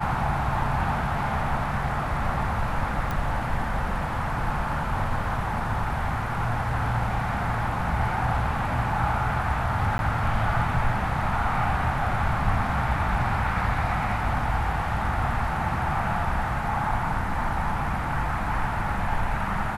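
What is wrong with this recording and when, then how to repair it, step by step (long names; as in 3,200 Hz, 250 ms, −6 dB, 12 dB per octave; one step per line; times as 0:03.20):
0:03.11: click −16 dBFS
0:09.98–0:09.99: drop-out 11 ms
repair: click removal
repair the gap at 0:09.98, 11 ms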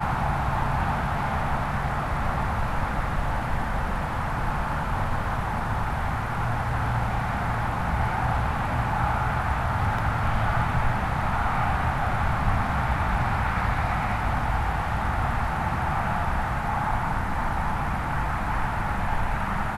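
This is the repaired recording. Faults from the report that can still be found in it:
none of them is left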